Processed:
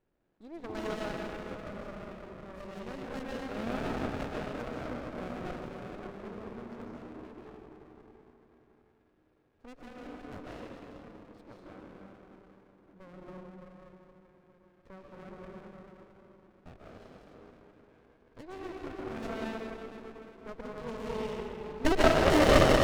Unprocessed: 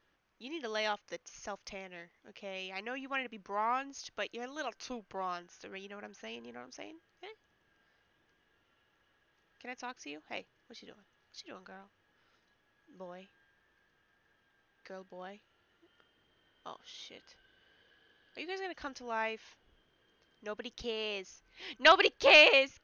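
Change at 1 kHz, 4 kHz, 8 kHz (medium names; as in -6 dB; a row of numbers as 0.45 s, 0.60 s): 0.0 dB, -6.5 dB, no reading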